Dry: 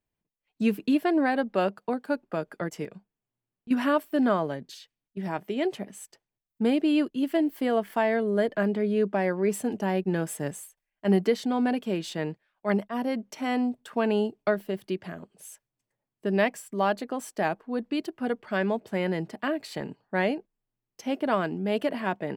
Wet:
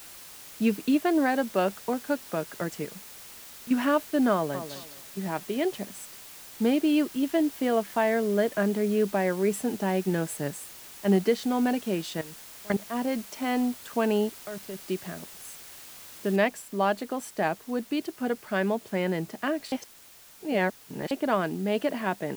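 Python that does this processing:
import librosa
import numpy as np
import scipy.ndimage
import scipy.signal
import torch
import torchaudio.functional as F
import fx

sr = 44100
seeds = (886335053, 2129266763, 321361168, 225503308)

y = fx.echo_throw(x, sr, start_s=4.33, length_s=0.4, ms=210, feedback_pct=25, wet_db=-10.0)
y = fx.level_steps(y, sr, step_db=23, at=(12.21, 12.86))
y = fx.level_steps(y, sr, step_db=18, at=(14.28, 14.87))
y = fx.noise_floor_step(y, sr, seeds[0], at_s=16.36, before_db=-46, after_db=-52, tilt_db=0.0)
y = fx.edit(y, sr, fx.reverse_span(start_s=19.72, length_s=1.39), tone=tone)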